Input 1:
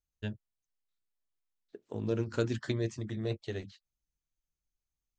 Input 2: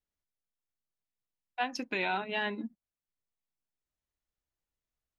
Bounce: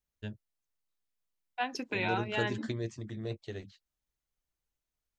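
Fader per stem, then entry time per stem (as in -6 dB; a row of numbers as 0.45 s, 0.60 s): -3.5 dB, -1.0 dB; 0.00 s, 0.00 s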